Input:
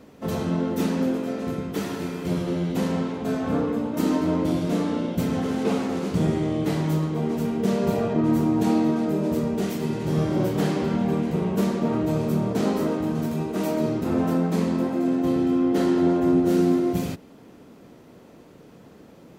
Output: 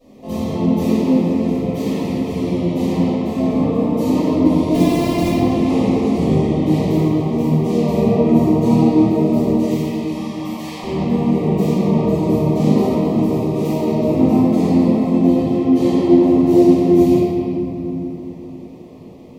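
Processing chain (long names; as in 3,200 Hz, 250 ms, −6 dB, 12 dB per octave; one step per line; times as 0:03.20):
0:04.74–0:05.28: samples sorted by size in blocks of 128 samples
0:09.50–0:10.83: high-pass filter 890 Hz 24 dB per octave
tape wow and flutter 32 cents
Butterworth band-reject 1,500 Hz, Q 1.8
convolution reverb RT60 3.2 s, pre-delay 4 ms, DRR −18 dB
level −16 dB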